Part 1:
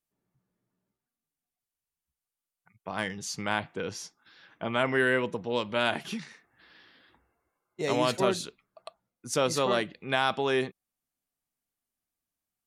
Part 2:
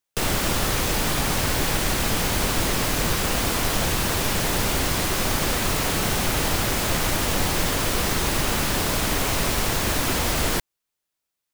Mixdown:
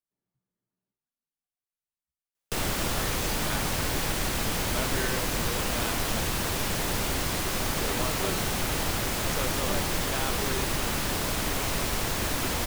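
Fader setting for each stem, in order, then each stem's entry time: -9.0, -5.5 dB; 0.00, 2.35 s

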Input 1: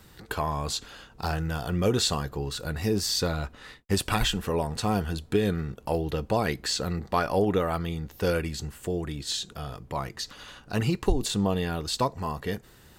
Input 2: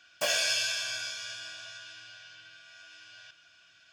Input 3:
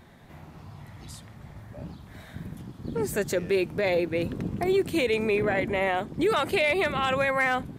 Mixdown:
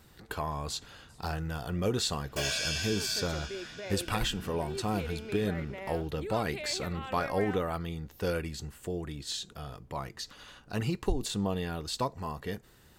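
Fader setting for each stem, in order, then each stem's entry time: -5.5, -4.5, -16.0 dB; 0.00, 2.15, 0.00 s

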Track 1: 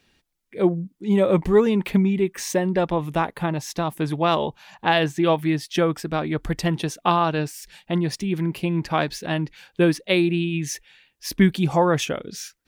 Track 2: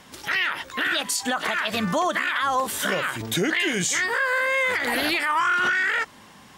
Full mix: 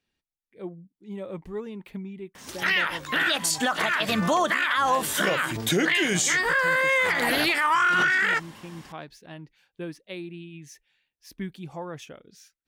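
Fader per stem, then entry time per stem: -17.5, +0.5 dB; 0.00, 2.35 s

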